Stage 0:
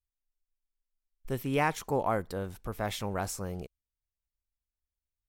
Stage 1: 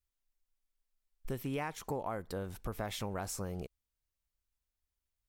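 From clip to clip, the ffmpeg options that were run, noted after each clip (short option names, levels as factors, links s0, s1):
-af "acompressor=threshold=0.0141:ratio=6,volume=1.33"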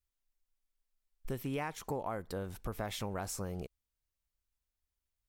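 -af anull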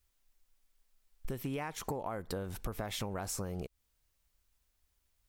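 -af "acompressor=threshold=0.00501:ratio=6,volume=3.55"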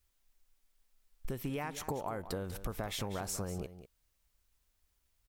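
-af "aecho=1:1:193:0.224"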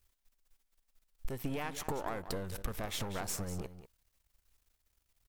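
-af "aeval=exprs='if(lt(val(0),0),0.251*val(0),val(0))':c=same,volume=1.58"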